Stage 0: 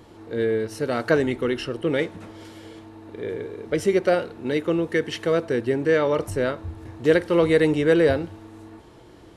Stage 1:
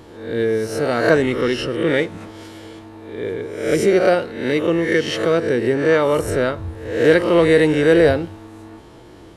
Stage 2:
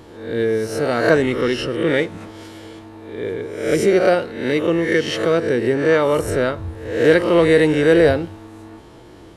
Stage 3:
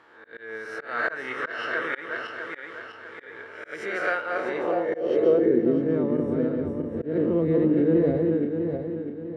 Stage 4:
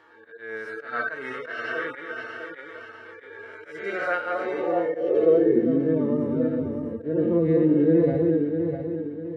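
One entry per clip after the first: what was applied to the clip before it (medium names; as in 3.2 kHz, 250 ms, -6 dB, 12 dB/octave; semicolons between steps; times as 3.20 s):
reverse spectral sustain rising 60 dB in 0.67 s; trim +3.5 dB
no audible change
backward echo that repeats 325 ms, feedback 63%, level -3 dB; band-pass sweep 1.5 kHz -> 230 Hz, 4.17–5.82 s; slow attack 184 ms
harmonic-percussive separation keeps harmonic; trim +2 dB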